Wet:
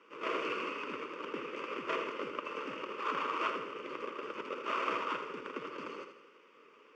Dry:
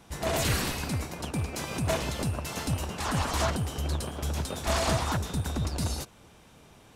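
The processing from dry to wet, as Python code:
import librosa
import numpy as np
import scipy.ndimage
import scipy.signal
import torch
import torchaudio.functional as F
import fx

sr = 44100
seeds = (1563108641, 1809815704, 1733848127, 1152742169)

p1 = scipy.ndimage.median_filter(x, 25, mode='constant')
p2 = fx.rider(p1, sr, range_db=10, speed_s=0.5)
p3 = p1 + (p2 * 10.0 ** (1.0 / 20.0))
p4 = fx.quant_dither(p3, sr, seeds[0], bits=10, dither='none')
p5 = fx.cabinet(p4, sr, low_hz=420.0, low_slope=24, high_hz=4700.0, hz=(460.0, 830.0, 1200.0, 1700.0, 2700.0, 4100.0), db=(3, -9, 6, -7, 7, 8))
p6 = fx.fixed_phaser(p5, sr, hz=1700.0, stages=4)
y = p6 + fx.echo_feedback(p6, sr, ms=81, feedback_pct=49, wet_db=-8, dry=0)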